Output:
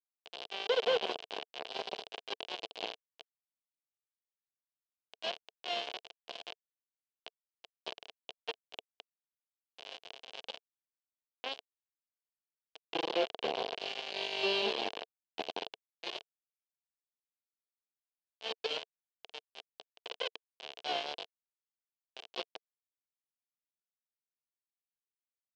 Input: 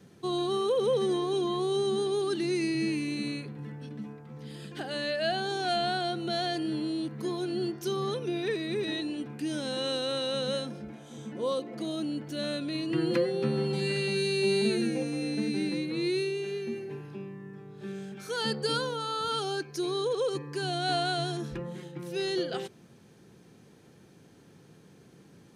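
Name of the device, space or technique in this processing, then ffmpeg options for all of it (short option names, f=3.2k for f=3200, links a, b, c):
hand-held game console: -af "acrusher=bits=3:mix=0:aa=0.000001,highpass=440,equalizer=f=450:t=q:w=4:g=7,equalizer=f=680:t=q:w=4:g=7,equalizer=f=1.3k:t=q:w=4:g=-9,equalizer=f=1.9k:t=q:w=4:g=-7,equalizer=f=3k:t=q:w=4:g=8,lowpass=f=4.2k:w=0.5412,lowpass=f=4.2k:w=1.3066,volume=-6.5dB"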